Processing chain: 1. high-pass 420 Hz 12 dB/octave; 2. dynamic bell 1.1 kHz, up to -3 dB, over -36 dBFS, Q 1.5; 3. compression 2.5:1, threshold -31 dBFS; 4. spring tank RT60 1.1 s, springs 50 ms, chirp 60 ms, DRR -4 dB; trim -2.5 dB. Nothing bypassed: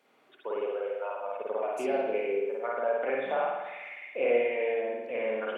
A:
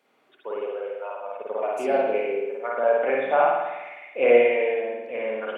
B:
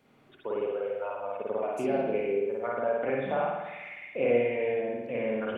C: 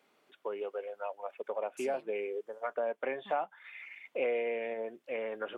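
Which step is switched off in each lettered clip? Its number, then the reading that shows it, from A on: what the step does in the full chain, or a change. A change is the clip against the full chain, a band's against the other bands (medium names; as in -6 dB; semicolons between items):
3, mean gain reduction 3.5 dB; 1, 250 Hz band +6.5 dB; 4, loudness change -6.0 LU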